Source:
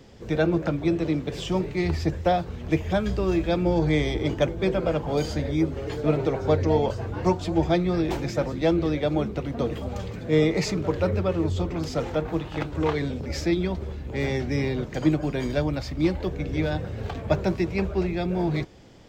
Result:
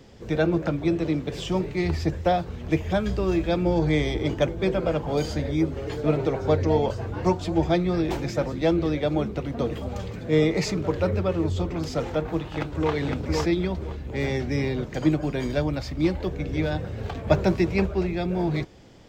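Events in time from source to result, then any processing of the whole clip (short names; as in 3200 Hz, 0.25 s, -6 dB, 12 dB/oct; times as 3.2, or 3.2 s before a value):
12.41–12.94 echo throw 0.51 s, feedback 20%, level -2.5 dB
17.27–17.86 gain +3 dB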